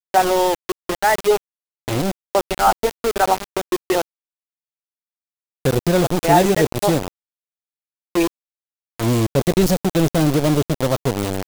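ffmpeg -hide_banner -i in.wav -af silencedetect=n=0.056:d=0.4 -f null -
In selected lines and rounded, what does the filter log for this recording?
silence_start: 1.37
silence_end: 1.88 | silence_duration: 0.51
silence_start: 4.02
silence_end: 5.65 | silence_duration: 1.64
silence_start: 7.08
silence_end: 8.15 | silence_duration: 1.07
silence_start: 8.27
silence_end: 9.00 | silence_duration: 0.72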